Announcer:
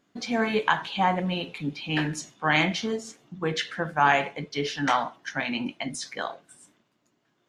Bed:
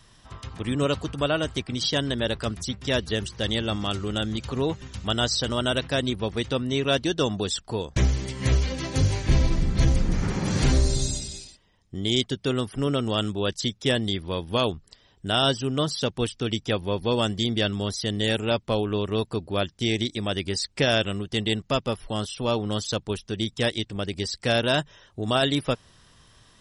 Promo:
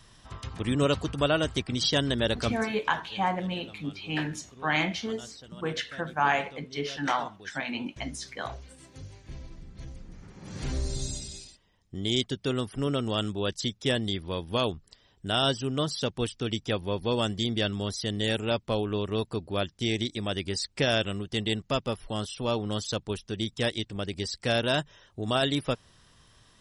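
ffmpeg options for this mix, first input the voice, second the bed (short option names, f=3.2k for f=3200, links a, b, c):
-filter_complex "[0:a]adelay=2200,volume=-4dB[a];[1:a]volume=18.5dB,afade=t=out:st=2.48:d=0.2:silence=0.0794328,afade=t=in:st=10.35:d=1.13:silence=0.112202[b];[a][b]amix=inputs=2:normalize=0"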